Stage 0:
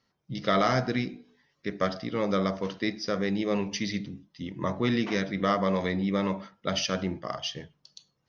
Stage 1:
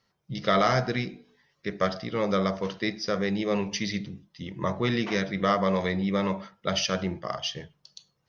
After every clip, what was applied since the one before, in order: bell 270 Hz -9 dB 0.33 oct; gain +2 dB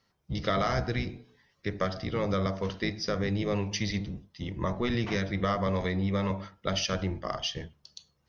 octaver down 1 oct, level -1 dB; compressor 2:1, threshold -28 dBFS, peak gain reduction 6 dB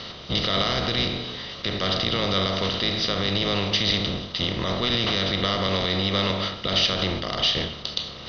per-bin compression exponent 0.4; limiter -15.5 dBFS, peak gain reduction 8 dB; synth low-pass 3900 Hz, resonance Q 6.6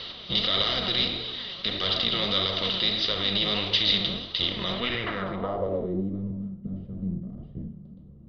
low-pass sweep 3800 Hz -> 190 Hz, 4.67–6.28; flange 1.6 Hz, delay 1.8 ms, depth 4.2 ms, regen +35%; gain -2 dB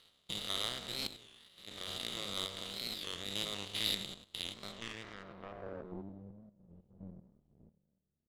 stepped spectrum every 0.1 s; power-law curve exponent 2; record warp 33 1/3 rpm, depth 160 cents; gain -3 dB

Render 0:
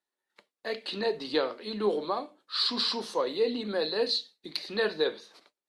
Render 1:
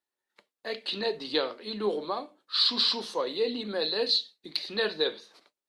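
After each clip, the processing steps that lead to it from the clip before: dynamic EQ 3500 Hz, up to +7 dB, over -44 dBFS, Q 1.4; gain -1.5 dB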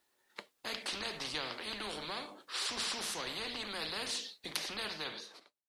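ending faded out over 1.20 s; spectral compressor 4:1; gain -5 dB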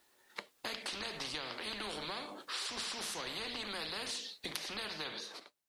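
compressor 4:1, threshold -46 dBFS, peak gain reduction 13 dB; gain +7 dB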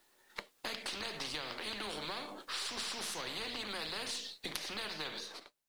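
half-wave gain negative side -3 dB; in parallel at -3 dB: short-mantissa float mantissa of 2-bit; on the sum: gain -3 dB

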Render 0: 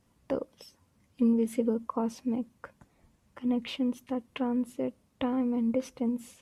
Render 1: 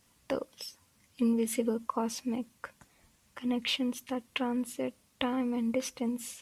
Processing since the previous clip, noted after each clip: tilt shelf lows -7 dB, about 1300 Hz; gain +3.5 dB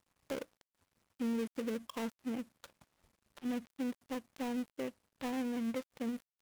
switching dead time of 0.27 ms; limiter -23 dBFS, peak gain reduction 9.5 dB; gain -5 dB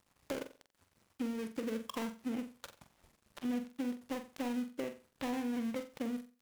compressor 4:1, threshold -40 dBFS, peak gain reduction 7.5 dB; on a send: flutter echo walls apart 7.7 m, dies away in 0.32 s; on the sum: gain +5 dB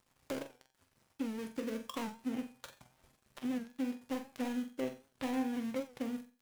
resonator 130 Hz, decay 0.34 s, harmonics all, mix 70%; record warp 78 rpm, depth 100 cents; gain +7 dB

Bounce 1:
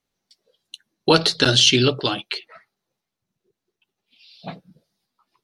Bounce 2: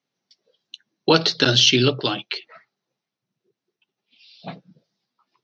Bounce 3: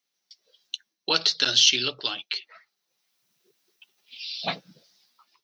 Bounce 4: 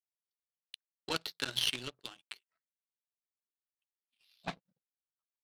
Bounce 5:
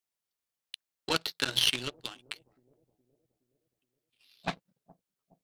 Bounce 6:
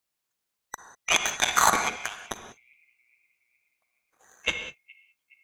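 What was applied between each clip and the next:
Chebyshev band-pass 120–5900 Hz, order 4
tilt +4 dB/oct; AGC gain up to 13 dB; gain -5.5 dB
tone controls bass +8 dB, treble -15 dB; power-law curve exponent 2; gain -2 dB
analogue delay 0.418 s, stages 2048, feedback 52%, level -22.5 dB; gain +6 dB
band-swap scrambler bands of 2000 Hz; reverb, pre-delay 38 ms, DRR 7 dB; gain +6 dB

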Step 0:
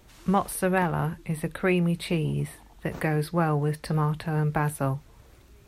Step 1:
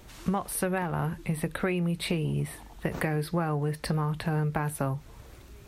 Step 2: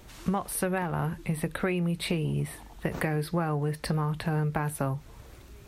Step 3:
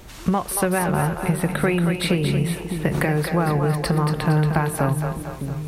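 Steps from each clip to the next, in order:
compressor, threshold -30 dBFS, peak gain reduction 12.5 dB; gain +4.5 dB
nothing audible
split-band echo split 380 Hz, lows 0.606 s, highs 0.23 s, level -6 dB; gain +7.5 dB

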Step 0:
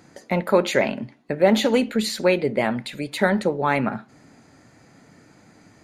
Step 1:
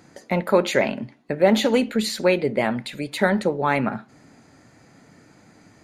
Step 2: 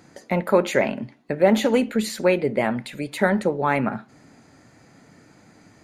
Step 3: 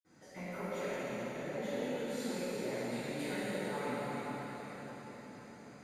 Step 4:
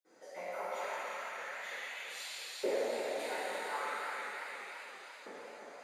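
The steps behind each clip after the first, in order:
nothing audible
dynamic EQ 4100 Hz, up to -6 dB, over -42 dBFS, Q 1.5
compressor 4:1, threshold -30 dBFS, peak gain reduction 15.5 dB; reverb RT60 5.6 s, pre-delay 47 ms; gain +8 dB
LFO high-pass saw up 0.38 Hz 410–3700 Hz; warbling echo 0.337 s, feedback 65%, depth 69 cents, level -8.5 dB

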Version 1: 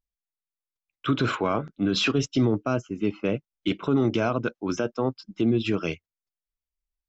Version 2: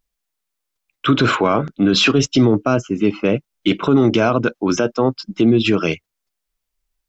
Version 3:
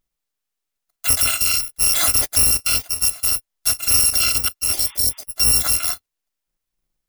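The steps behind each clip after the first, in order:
bell 70 Hz -13 dB 0.64 oct; in parallel at +2.5 dB: limiter -24.5 dBFS, peak gain reduction 11.5 dB; on the sum: gain +6 dB
FFT order left unsorted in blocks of 256 samples; spectral repair 4.8–5.2, 830–3700 Hz both; gain -2.5 dB

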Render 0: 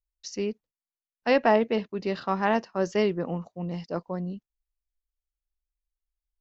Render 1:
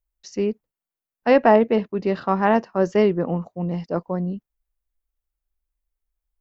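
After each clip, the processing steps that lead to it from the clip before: bell 4900 Hz -10 dB 2.2 oct; gain +7 dB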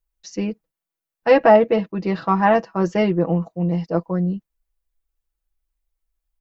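comb 6.1 ms, depth 80%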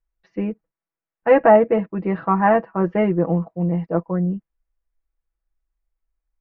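LPF 2200 Hz 24 dB/oct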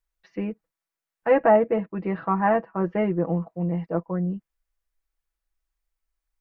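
mismatched tape noise reduction encoder only; gain -5 dB

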